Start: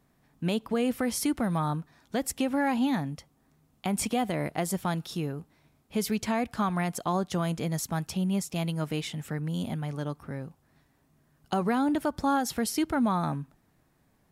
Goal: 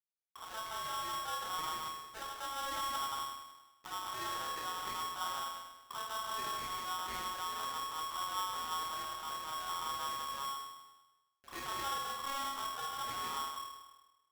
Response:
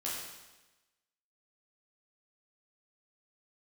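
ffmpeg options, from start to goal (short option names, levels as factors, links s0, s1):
-filter_complex "[0:a]lowpass=3000,aemphasis=mode=reproduction:type=bsi,bandreject=f=50:t=h:w=6,bandreject=f=100:t=h:w=6,bandreject=f=150:t=h:w=6,bandreject=f=200:t=h:w=6,bandreject=f=250:t=h:w=6,afwtdn=0.0158,asubboost=boost=4.5:cutoff=61,alimiter=limit=0.0631:level=0:latency=1:release=128,acompressor=threshold=0.00891:ratio=12,acrossover=split=400[s0][s1];[s0]aeval=exprs='val(0)*(1-1/2+1/2*cos(2*PI*5.4*n/s))':c=same[s2];[s1]aeval=exprs='val(0)*(1-1/2-1/2*cos(2*PI*5.4*n/s))':c=same[s3];[s2][s3]amix=inputs=2:normalize=0,acrusher=bits=6:dc=4:mix=0:aa=0.000001,asettb=1/sr,asplit=3[s4][s5][s6];[s4]atrim=end=9.344[s7];[s5]atrim=start=9.34:end=11.66,asetpts=PTS-STARTPTS,afade=t=in:d=0.004:c=qsin,afade=t=out:st=2.316:d=0.004:c=qsin,acrossover=split=330[s8][s9];[s8]adelay=40[s10];[s10][s9]amix=inputs=2:normalize=0,atrim=end_sample=102312[s11];[s6]atrim=start=11.656[s12];[s7][s11]acrossfade=d=0.004:c1=hsin:c2=qsin[s13];[s13][s12]acrossfade=d=0.004:c1=qsin:c2=hsin[s14];[1:a]atrim=start_sample=2205[s15];[s14][s15]afir=irnorm=-1:irlink=0,aeval=exprs='val(0)*sgn(sin(2*PI*1100*n/s))':c=same,volume=2.11"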